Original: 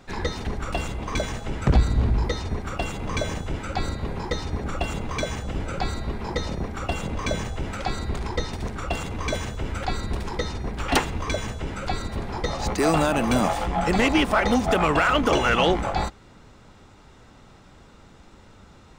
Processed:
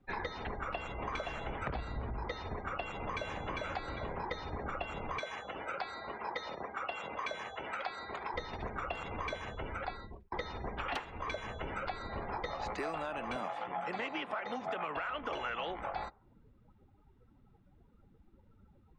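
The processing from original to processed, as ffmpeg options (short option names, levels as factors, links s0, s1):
-filter_complex "[0:a]asplit=2[s0][s1];[s1]afade=t=in:st=0.5:d=0.01,afade=t=out:st=1.06:d=0.01,aecho=0:1:520|1040|1560|2080|2600:0.794328|0.317731|0.127093|0.050837|0.0203348[s2];[s0][s2]amix=inputs=2:normalize=0,asplit=2[s3][s4];[s4]afade=t=in:st=2.81:d=0.01,afade=t=out:st=3.59:d=0.01,aecho=0:1:400|800|1200|1600:0.668344|0.200503|0.060151|0.0180453[s5];[s3][s5]amix=inputs=2:normalize=0,asettb=1/sr,asplit=3[s6][s7][s8];[s6]atrim=end=5.194[s9];[s7]atrim=start=5.19:end=8.34,asetpts=PTS-STARTPTS,afade=t=in:d=0.004:c=qsin,afade=t=out:st=3.146:d=0.004:c=qsin,highpass=f=620:p=1[s10];[s8]atrim=start=8.336[s11];[s9][s10]acrossfade=d=0.004:c1=hsin:c2=qsin[s12];[s12][s11]acrossfade=d=0.004:c1=qsin:c2=hsin,asettb=1/sr,asplit=3[s13][s14][s15];[s13]atrim=end=13.364[s16];[s14]atrim=start=13.36:end=14.97,asetpts=PTS-STARTPTS,afade=t=in:d=0.004:c=qsin,afade=t=out:st=1.606:d=0.004:c=qsin,highpass=f=120:w=0.5412,highpass=f=120:w=1.3066[s17];[s15]atrim=start=14.966[s18];[s16][s17]acrossfade=d=0.004:c1=hsin:c2=qsin[s19];[s19][s18]acrossfade=d=0.004:c1=qsin:c2=hsin,asplit=2[s20][s21];[s20]atrim=end=10.32,asetpts=PTS-STARTPTS,afade=t=out:st=9.17:d=1.15:c=qsin[s22];[s21]atrim=start=10.32,asetpts=PTS-STARTPTS,afade=t=in:d=0.004:c=hsin[s23];[s22][s23]concat=n=2:v=0:a=1,afftdn=nr=27:nf=-42,acrossover=split=480 3700:gain=0.251 1 0.141[s24][s25][s26];[s24][s25][s26]amix=inputs=3:normalize=0,acompressor=threshold=0.0158:ratio=10,volume=1.12"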